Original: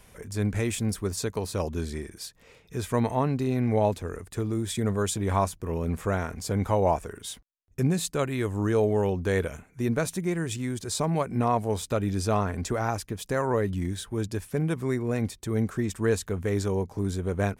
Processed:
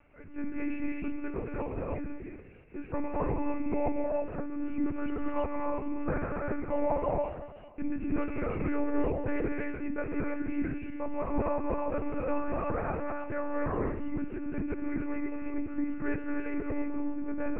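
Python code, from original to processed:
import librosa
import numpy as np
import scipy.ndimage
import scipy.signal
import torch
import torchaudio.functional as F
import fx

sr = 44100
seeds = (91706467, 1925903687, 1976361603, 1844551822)

y = scipy.signal.sosfilt(scipy.signal.cheby1(10, 1.0, 2900.0, 'lowpass', fs=sr, output='sos'), x)
y = fx.notch(y, sr, hz=1800.0, q=21.0)
y = fx.echo_feedback(y, sr, ms=231, feedback_pct=41, wet_db=-14)
y = fx.rev_gated(y, sr, seeds[0], gate_ms=350, shape='rising', drr_db=-1.0)
y = fx.lpc_monotone(y, sr, seeds[1], pitch_hz=290.0, order=8)
y = y * 10.0 ** (-7.0 / 20.0)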